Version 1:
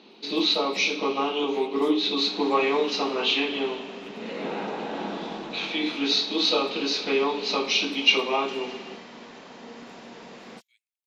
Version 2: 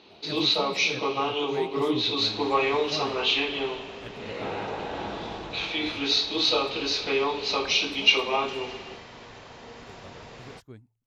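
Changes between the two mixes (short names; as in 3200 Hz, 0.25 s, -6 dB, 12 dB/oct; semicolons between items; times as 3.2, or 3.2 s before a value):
speech: remove Chebyshev high-pass 2200 Hz, order 5; master: add resonant low shelf 140 Hz +14 dB, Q 3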